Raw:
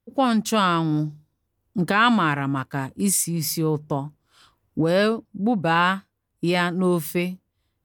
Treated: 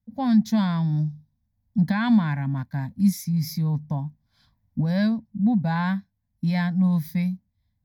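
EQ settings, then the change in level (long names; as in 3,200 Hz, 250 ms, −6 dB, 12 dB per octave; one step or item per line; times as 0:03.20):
low shelf with overshoot 290 Hz +8 dB, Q 3
phaser with its sweep stopped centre 1,900 Hz, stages 8
−6.0 dB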